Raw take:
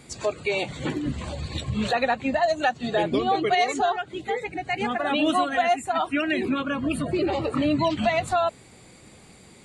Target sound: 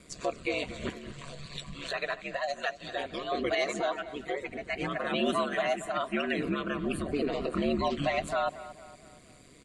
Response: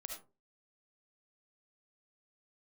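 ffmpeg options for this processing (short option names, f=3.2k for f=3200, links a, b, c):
-filter_complex "[0:a]asettb=1/sr,asplit=3[a][b][c];[a]atrim=end=0.894[d];[b]atrim=start=0.89:end=3.32,asetpts=PTS-STARTPTS,afade=t=in:d=0.004:c=qsin,afade=t=out:st=2.426:d=0.004:c=qsin,equalizer=f=210:w=0.56:g=-14[e];[c]atrim=start=3.316[f];[d][e]acrossfade=d=0.004:c1=hsin:c2=qsin[g];[g][f]acrossfade=d=0.004:c1=qsin:c2=hsin,aeval=exprs='val(0)*sin(2*PI*70*n/s)':c=same,asuperstop=centerf=840:order=8:qfactor=5,asplit=2[h][i];[i]adelay=231,lowpass=f=3.7k:p=1,volume=-15dB,asplit=2[j][k];[k]adelay=231,lowpass=f=3.7k:p=1,volume=0.48,asplit=2[l][m];[m]adelay=231,lowpass=f=3.7k:p=1,volume=0.48,asplit=2[n][o];[o]adelay=231,lowpass=f=3.7k:p=1,volume=0.48[p];[h][j][l][n][p]amix=inputs=5:normalize=0,volume=-3dB"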